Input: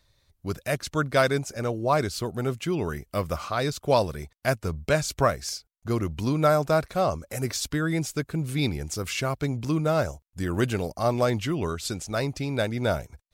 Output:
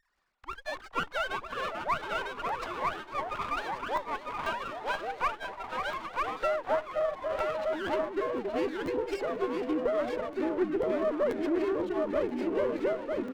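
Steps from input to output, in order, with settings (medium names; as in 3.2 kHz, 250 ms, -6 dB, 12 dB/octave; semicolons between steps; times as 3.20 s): formants replaced by sine waves; band-stop 1.3 kHz, Q 12; repeats whose band climbs or falls 272 ms, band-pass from 320 Hz, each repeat 1.4 oct, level -8 dB; high-pass sweep 1.2 kHz -> 410 Hz, 5.76–8.31 s; delay 950 ms -4 dB; compression 2:1, threshold -34 dBFS, peak gain reduction 12 dB; ever faster or slower copies 106 ms, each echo -4 st, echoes 2, each echo -6 dB; crackling interface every 0.49 s, samples 512, repeat, from 0.52 s; sliding maximum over 9 samples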